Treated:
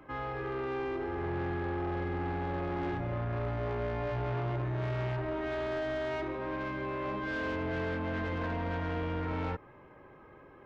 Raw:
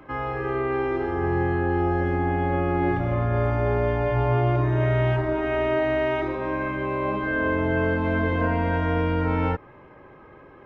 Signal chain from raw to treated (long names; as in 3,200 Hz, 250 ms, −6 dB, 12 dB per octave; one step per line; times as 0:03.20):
soft clipping −23.5 dBFS, distortion −11 dB
level −6.5 dB